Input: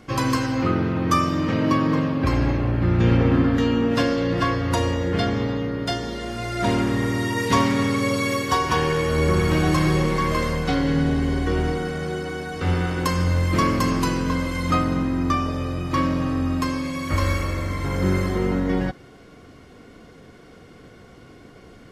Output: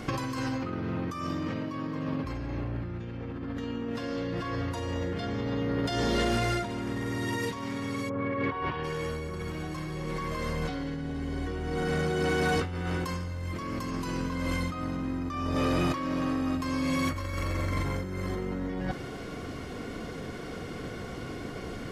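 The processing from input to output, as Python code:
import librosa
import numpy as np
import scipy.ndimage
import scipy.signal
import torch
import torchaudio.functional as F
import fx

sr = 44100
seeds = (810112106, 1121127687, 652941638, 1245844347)

y = fx.lowpass(x, sr, hz=fx.line((8.08, 1500.0), (8.83, 3700.0)), slope=24, at=(8.08, 8.83), fade=0.02)
y = fx.peak_eq(y, sr, hz=76.0, db=-11.5, octaves=1.9, at=(15.55, 16.57))
y = fx.over_compress(y, sr, threshold_db=-31.0, ratio=-1.0)
y = 10.0 ** (-20.0 / 20.0) * np.tanh(y / 10.0 ** (-20.0 / 20.0))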